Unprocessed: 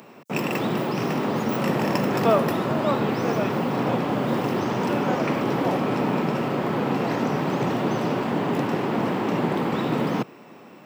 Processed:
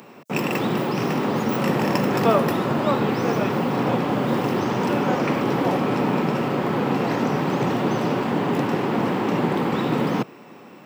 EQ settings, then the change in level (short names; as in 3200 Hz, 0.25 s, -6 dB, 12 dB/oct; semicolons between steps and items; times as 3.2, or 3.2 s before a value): notch 640 Hz, Q 16; +2.0 dB